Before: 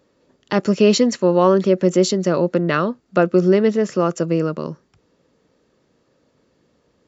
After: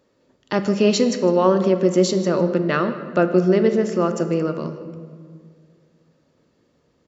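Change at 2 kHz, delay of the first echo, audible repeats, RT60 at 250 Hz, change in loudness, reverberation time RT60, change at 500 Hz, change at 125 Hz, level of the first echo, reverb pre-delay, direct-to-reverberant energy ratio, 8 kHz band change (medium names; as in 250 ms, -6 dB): -1.5 dB, 156 ms, 1, 2.5 s, -1.5 dB, 1.9 s, -1.5 dB, -1.5 dB, -19.5 dB, 3 ms, 7.5 dB, no reading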